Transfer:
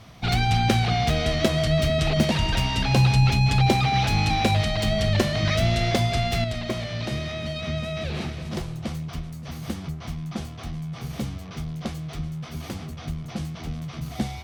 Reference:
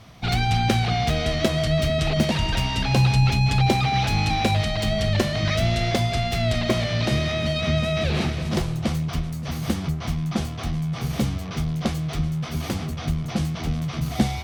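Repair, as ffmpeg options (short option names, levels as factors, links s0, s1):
-af "asetnsamples=n=441:p=0,asendcmd='6.44 volume volume 6.5dB',volume=1"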